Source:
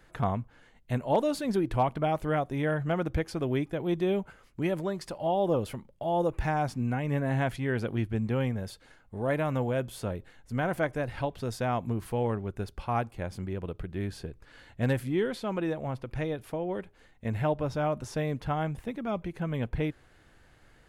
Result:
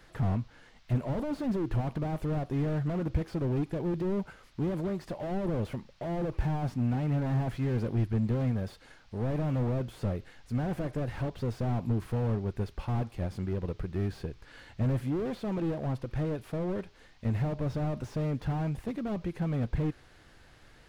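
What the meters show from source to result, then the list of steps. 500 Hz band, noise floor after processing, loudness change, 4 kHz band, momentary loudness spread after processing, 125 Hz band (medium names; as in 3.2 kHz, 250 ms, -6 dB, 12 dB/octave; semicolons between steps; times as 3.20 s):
-5.5 dB, -58 dBFS, -1.5 dB, -6.5 dB, 6 LU, +2.5 dB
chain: band noise 640–5200 Hz -70 dBFS; slew-rate limiter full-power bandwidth 9.6 Hz; trim +2 dB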